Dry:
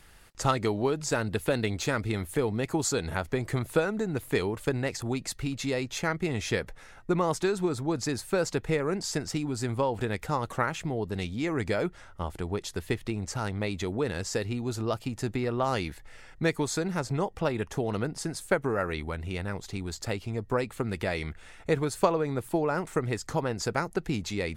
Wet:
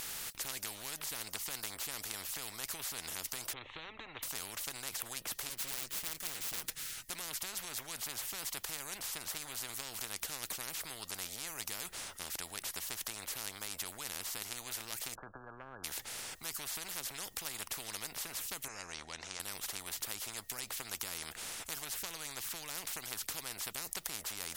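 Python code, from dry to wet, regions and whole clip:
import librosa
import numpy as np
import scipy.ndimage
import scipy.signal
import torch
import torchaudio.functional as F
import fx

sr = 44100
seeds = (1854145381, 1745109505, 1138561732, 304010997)

y = fx.chain(x, sr, fx.bessel_lowpass(hz=2200.0, order=8),
    fx.fixed_phaser(hz=1000.0, stages=8), at=(3.53, 4.23))
y = fx.chain(y, sr, fx.lower_of_two(delay_ms=6.3),
    fx.peak_eq(hz=720.0, db=-15.0, octaves=2.4), at=(5.49, 7.1))
y = fx.chain(y, sr, fx.brickwall_lowpass(high_hz=1700.0),
    fx.band_squash(depth_pct=40), at=(15.15, 15.84))
y = fx.chain(y, sr, fx.ladder_lowpass(hz=6400.0, resonance_pct=70),
    fx.band_shelf(hz=1100.0, db=13.5, octaves=2.5), at=(18.68, 19.4))
y = scipy.signal.lfilter([1.0, -0.9], [1.0], y)
y = fx.spectral_comp(y, sr, ratio=10.0)
y = F.gain(torch.from_numpy(y), 4.5).numpy()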